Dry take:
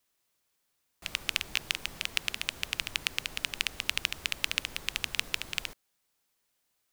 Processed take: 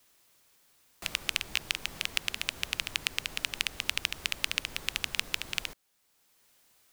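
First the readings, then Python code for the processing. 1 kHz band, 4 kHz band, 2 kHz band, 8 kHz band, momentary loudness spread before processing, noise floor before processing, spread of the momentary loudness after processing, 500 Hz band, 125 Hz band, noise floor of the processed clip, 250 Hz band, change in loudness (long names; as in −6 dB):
+0.5 dB, 0.0 dB, 0.0 dB, +1.0 dB, 4 LU, −78 dBFS, 3 LU, +0.5 dB, +0.5 dB, −71 dBFS, +0.5 dB, 0.0 dB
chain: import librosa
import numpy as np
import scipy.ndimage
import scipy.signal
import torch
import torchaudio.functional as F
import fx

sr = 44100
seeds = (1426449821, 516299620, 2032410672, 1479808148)

y = fx.band_squash(x, sr, depth_pct=40)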